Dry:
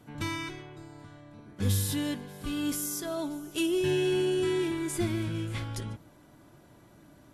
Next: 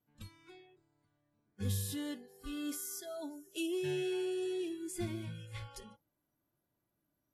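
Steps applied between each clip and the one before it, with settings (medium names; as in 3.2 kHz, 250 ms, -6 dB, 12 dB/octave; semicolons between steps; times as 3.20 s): spectral noise reduction 21 dB; trim -8 dB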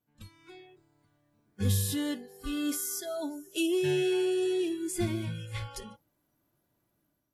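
level rider gain up to 8 dB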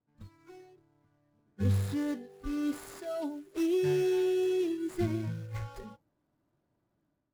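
median filter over 15 samples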